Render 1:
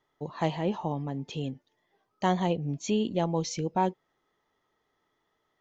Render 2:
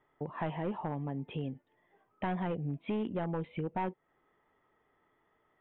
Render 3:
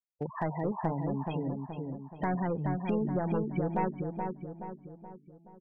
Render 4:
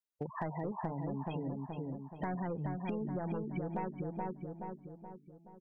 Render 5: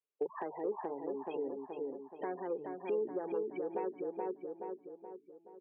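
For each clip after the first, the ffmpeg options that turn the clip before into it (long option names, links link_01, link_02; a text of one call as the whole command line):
ffmpeg -i in.wav -af "aresample=8000,asoftclip=type=hard:threshold=-23.5dB,aresample=44100,acompressor=threshold=-42dB:ratio=2,lowpass=frequency=2600:width=0.5412,lowpass=frequency=2600:width=1.3066,volume=3.5dB" out.wav
ffmpeg -i in.wav -filter_complex "[0:a]afftfilt=real='re*gte(hypot(re,im),0.0141)':imag='im*gte(hypot(re,im),0.0141)':win_size=1024:overlap=0.75,asoftclip=type=hard:threshold=-26.5dB,asplit=2[link_01][link_02];[link_02]adelay=425,lowpass=frequency=1700:poles=1,volume=-4dB,asplit=2[link_03][link_04];[link_04]adelay=425,lowpass=frequency=1700:poles=1,volume=0.5,asplit=2[link_05][link_06];[link_06]adelay=425,lowpass=frequency=1700:poles=1,volume=0.5,asplit=2[link_07][link_08];[link_08]adelay=425,lowpass=frequency=1700:poles=1,volume=0.5,asplit=2[link_09][link_10];[link_10]adelay=425,lowpass=frequency=1700:poles=1,volume=0.5,asplit=2[link_11][link_12];[link_12]adelay=425,lowpass=frequency=1700:poles=1,volume=0.5[link_13];[link_01][link_03][link_05][link_07][link_09][link_11][link_13]amix=inputs=7:normalize=0,volume=3dB" out.wav
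ffmpeg -i in.wav -af "acompressor=threshold=-32dB:ratio=6,volume=-2dB" out.wav
ffmpeg -i in.wav -af "highpass=frequency=360:width=0.5412,highpass=frequency=360:width=1.3066,equalizer=frequency=410:width_type=q:width=4:gain=8,equalizer=frequency=660:width_type=q:width=4:gain=-9,equalizer=frequency=980:width_type=q:width=4:gain=-6,equalizer=frequency=1400:width_type=q:width=4:gain=-9,equalizer=frequency=2000:width_type=q:width=4:gain=-10,lowpass=frequency=2500:width=0.5412,lowpass=frequency=2500:width=1.3066,volume=4.5dB" out.wav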